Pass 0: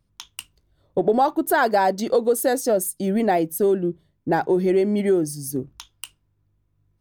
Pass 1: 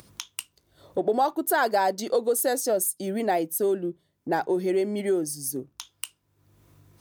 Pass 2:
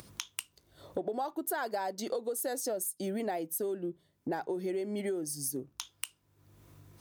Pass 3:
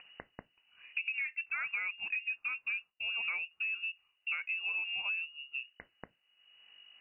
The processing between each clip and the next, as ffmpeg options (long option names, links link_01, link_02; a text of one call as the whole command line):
ffmpeg -i in.wav -af "highpass=80,acompressor=mode=upward:threshold=-27dB:ratio=2.5,bass=frequency=250:gain=-7,treble=frequency=4000:gain=5,volume=-4dB" out.wav
ffmpeg -i in.wav -af "acompressor=threshold=-32dB:ratio=6" out.wav
ffmpeg -i in.wav -af "lowpass=frequency=2600:width_type=q:width=0.5098,lowpass=frequency=2600:width_type=q:width=0.6013,lowpass=frequency=2600:width_type=q:width=0.9,lowpass=frequency=2600:width_type=q:width=2.563,afreqshift=-3000,volume=-2dB" out.wav